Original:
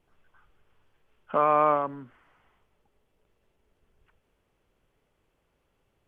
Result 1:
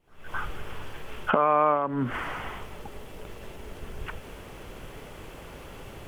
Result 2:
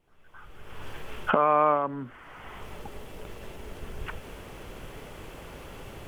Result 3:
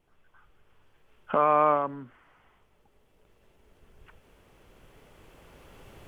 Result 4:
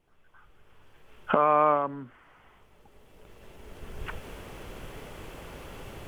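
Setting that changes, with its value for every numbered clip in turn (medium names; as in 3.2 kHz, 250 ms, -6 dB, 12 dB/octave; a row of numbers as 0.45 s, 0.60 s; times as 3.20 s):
recorder AGC, rising by: 91 dB/s, 34 dB/s, 5.4 dB/s, 13 dB/s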